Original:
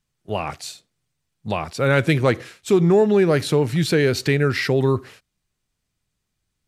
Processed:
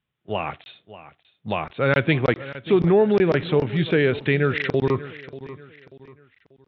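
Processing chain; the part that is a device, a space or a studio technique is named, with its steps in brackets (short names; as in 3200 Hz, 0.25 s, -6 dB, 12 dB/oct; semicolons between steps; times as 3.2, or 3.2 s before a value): call with lost packets (HPF 100 Hz 6 dB/oct; downsampling 8000 Hz; packet loss packets of 20 ms random); elliptic low-pass 5400 Hz; high shelf 7600 Hz +6 dB; feedback echo 0.588 s, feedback 36%, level -16 dB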